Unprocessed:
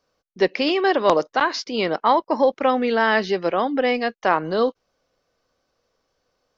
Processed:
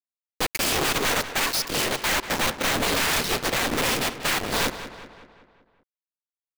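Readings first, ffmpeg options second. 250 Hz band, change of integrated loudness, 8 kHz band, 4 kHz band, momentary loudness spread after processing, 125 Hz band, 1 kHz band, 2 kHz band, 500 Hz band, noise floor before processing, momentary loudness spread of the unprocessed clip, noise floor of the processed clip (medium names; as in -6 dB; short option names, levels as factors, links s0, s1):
-7.0 dB, -3.0 dB, no reading, +5.0 dB, 4 LU, +4.0 dB, -7.0 dB, 0.0 dB, -10.0 dB, -74 dBFS, 5 LU, under -85 dBFS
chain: -filter_complex "[0:a]aemphasis=mode=production:type=50fm,afftfilt=real='hypot(re,im)*cos(2*PI*random(0))':imag='hypot(re,im)*sin(2*PI*random(1))':win_size=512:overlap=0.75,aeval=exprs='(tanh(25.1*val(0)+0.45)-tanh(0.45))/25.1':c=same,acrossover=split=1200[s0][s1];[s0]aeval=exprs='sgn(val(0))*max(abs(val(0))-0.00224,0)':c=same[s2];[s2][s1]amix=inputs=2:normalize=0,acrusher=bits=5:mix=0:aa=0.000001,aeval=exprs='(mod(18.8*val(0)+1,2)-1)/18.8':c=same,asplit=2[s3][s4];[s4]adelay=189,lowpass=f=4200:p=1,volume=0.266,asplit=2[s5][s6];[s6]adelay=189,lowpass=f=4200:p=1,volume=0.54,asplit=2[s7][s8];[s8]adelay=189,lowpass=f=4200:p=1,volume=0.54,asplit=2[s9][s10];[s10]adelay=189,lowpass=f=4200:p=1,volume=0.54,asplit=2[s11][s12];[s12]adelay=189,lowpass=f=4200:p=1,volume=0.54,asplit=2[s13][s14];[s14]adelay=189,lowpass=f=4200:p=1,volume=0.54[s15];[s5][s7][s9][s11][s13][s15]amix=inputs=6:normalize=0[s16];[s3][s16]amix=inputs=2:normalize=0,volume=2.66"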